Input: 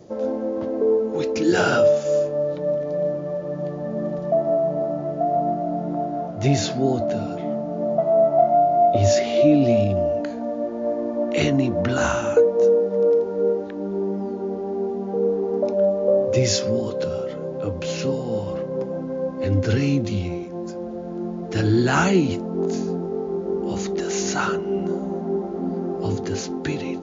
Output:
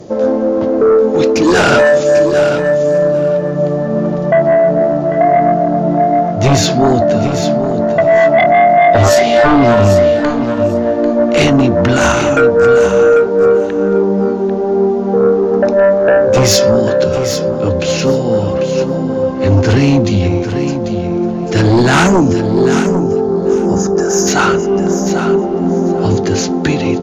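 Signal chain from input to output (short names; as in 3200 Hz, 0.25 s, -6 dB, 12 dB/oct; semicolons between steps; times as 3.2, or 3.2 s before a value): spectral gain 22.06–24.27, 1800–4800 Hz -18 dB; sine folder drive 9 dB, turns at -5.5 dBFS; feedback echo 0.794 s, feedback 17%, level -9 dB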